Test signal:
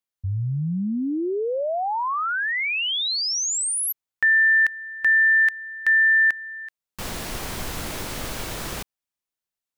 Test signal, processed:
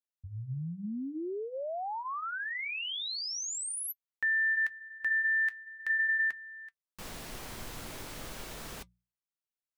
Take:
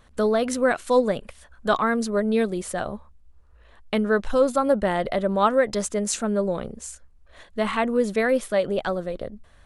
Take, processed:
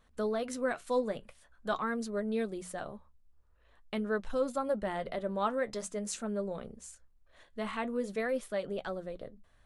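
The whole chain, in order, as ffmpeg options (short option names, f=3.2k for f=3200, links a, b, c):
-af "bandreject=f=60:t=h:w=6,bandreject=f=120:t=h:w=6,bandreject=f=180:t=h:w=6,flanger=delay=4.4:depth=4.1:regen=-66:speed=0.46:shape=sinusoidal,volume=-7.5dB"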